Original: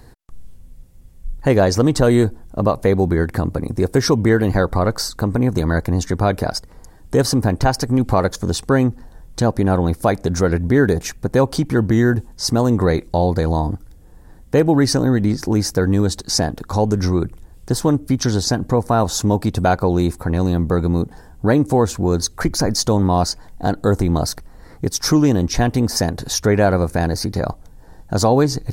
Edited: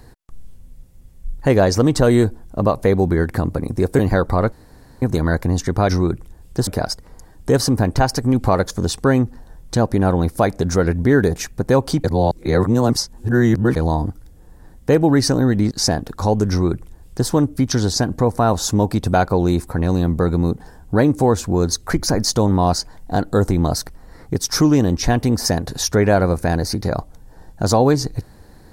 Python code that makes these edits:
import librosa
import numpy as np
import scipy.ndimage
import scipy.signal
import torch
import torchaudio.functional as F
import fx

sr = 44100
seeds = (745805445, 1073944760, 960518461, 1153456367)

y = fx.edit(x, sr, fx.cut(start_s=3.99, length_s=0.43),
    fx.room_tone_fill(start_s=4.95, length_s=0.5),
    fx.reverse_span(start_s=11.69, length_s=1.72),
    fx.cut(start_s=15.36, length_s=0.86),
    fx.duplicate(start_s=17.01, length_s=0.78, to_s=6.32), tone=tone)